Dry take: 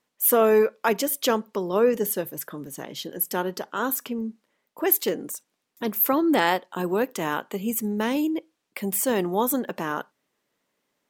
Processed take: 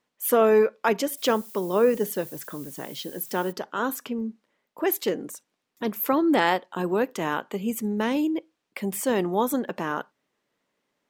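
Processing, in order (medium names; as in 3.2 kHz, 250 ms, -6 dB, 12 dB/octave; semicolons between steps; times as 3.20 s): treble shelf 8 kHz -10 dB; 1.16–3.51 s: added noise violet -45 dBFS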